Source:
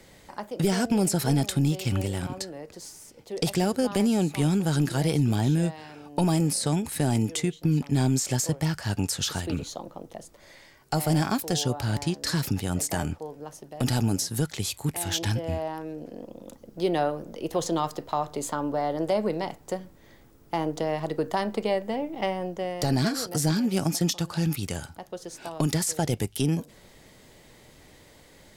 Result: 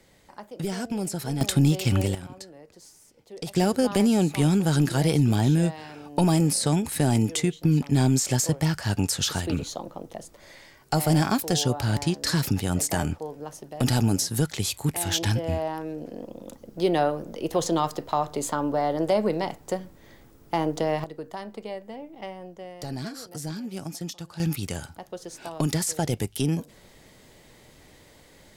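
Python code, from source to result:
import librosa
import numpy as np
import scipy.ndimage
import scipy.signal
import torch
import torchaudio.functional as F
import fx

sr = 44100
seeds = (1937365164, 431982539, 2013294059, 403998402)

y = fx.gain(x, sr, db=fx.steps((0.0, -6.0), (1.41, 4.0), (2.15, -8.0), (3.56, 2.5), (21.04, -9.5), (24.4, 0.0)))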